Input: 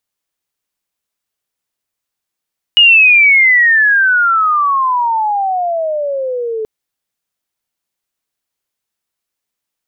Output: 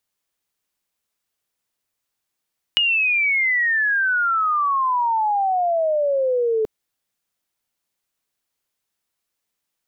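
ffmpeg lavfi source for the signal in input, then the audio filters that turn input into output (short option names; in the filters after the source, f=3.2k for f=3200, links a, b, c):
-f lavfi -i "aevalsrc='pow(10,(-3-13.5*t/3.88)/20)*sin(2*PI*2900*3.88/log(430/2900)*(exp(log(430/2900)*t/3.88)-1))':d=3.88:s=44100"
-filter_complex "[0:a]acrossover=split=340[a][b];[b]acompressor=threshold=-19dB:ratio=6[c];[a][c]amix=inputs=2:normalize=0"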